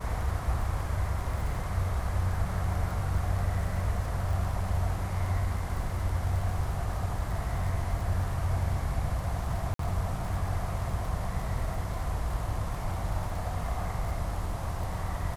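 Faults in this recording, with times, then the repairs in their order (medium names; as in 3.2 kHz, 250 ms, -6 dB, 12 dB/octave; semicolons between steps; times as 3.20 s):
crackle 42 per s -36 dBFS
9.74–9.79 s: dropout 53 ms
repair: de-click; interpolate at 9.74 s, 53 ms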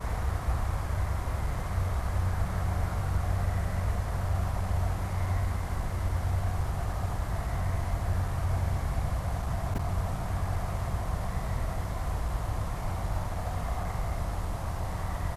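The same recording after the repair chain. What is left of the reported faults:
nothing left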